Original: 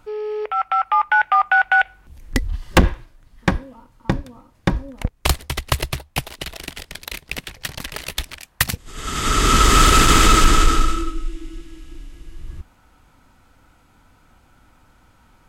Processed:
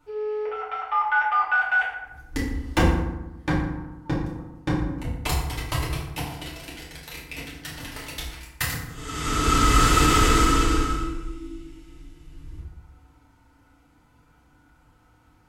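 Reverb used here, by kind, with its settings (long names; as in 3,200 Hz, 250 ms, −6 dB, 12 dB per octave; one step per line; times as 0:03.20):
feedback delay network reverb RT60 1 s, low-frequency decay 1.3×, high-frequency decay 0.55×, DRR −8 dB
level −14 dB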